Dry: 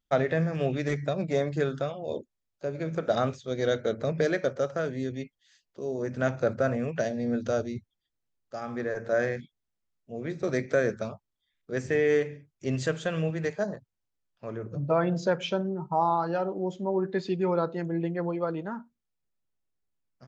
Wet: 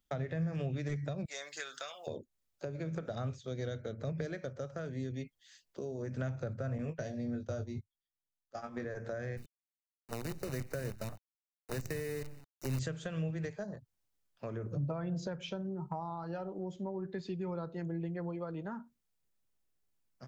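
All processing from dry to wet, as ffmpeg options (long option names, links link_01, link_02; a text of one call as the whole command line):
ffmpeg -i in.wav -filter_complex "[0:a]asettb=1/sr,asplit=3[link_01][link_02][link_03];[link_01]atrim=end=1.254[link_04];[link_02]atrim=start=1.25:end=2.07,asetpts=PTS-STARTPTS,afade=type=in:duration=0.004:curve=qsin,afade=type=out:start_time=0.816:duration=0.004:curve=qsin,highpass=1300,highshelf=frequency=5100:gain=11[link_05];[link_03]atrim=start=2.066[link_06];[link_04][link_05]acrossfade=duration=0.004:curve1=hsin:curve2=qsin[link_07];[link_07][link_06]acrossfade=duration=0.004:curve1=qsin:curve2=hsin,asettb=1/sr,asplit=3[link_08][link_09][link_10];[link_08]atrim=end=6.784[link_11];[link_09]atrim=start=6.78:end=8.85,asetpts=PTS-STARTPTS,afade=type=in:duration=0.004:curve=qsin,afade=type=out:start_time=2.066:duration=0.004:curve=qsin,agate=range=-18dB:threshold=-35dB:ratio=16:release=100:detection=peak,asplit=2[link_12][link_13];[link_13]adelay=20,volume=-6dB[link_14];[link_12][link_14]amix=inputs=2:normalize=0,atrim=end_sample=91287[link_15];[link_10]atrim=start=8.846[link_16];[link_11][link_15]acrossfade=duration=0.004:curve1=hsin:curve2=qsin[link_17];[link_17][link_16]acrossfade=duration=0.004:curve1=qsin:curve2=hsin,asettb=1/sr,asplit=3[link_18][link_19][link_20];[link_18]atrim=end=9.374[link_21];[link_19]atrim=start=9.37:end=12.79,asetpts=PTS-STARTPTS,afade=type=in:duration=0.004:curve=qsin,afade=type=out:start_time=3.416:duration=0.004:curve=qsin,acrusher=bits=6:dc=4:mix=0:aa=0.000001,asuperstop=centerf=3300:order=20:qfactor=6.4[link_22];[link_20]atrim=start=12.786[link_23];[link_21][link_22]acrossfade=duration=0.004:curve1=hsin:curve2=qsin[link_24];[link_24][link_23]acrossfade=duration=0.004:curve1=qsin:curve2=hsin,highshelf=frequency=6300:gain=5,acrossover=split=130[link_25][link_26];[link_26]acompressor=threshold=-40dB:ratio=8[link_27];[link_25][link_27]amix=inputs=2:normalize=0,volume=1.5dB" out.wav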